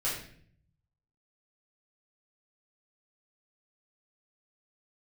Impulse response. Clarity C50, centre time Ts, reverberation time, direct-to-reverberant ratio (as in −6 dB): 3.5 dB, 42 ms, 0.55 s, −9.5 dB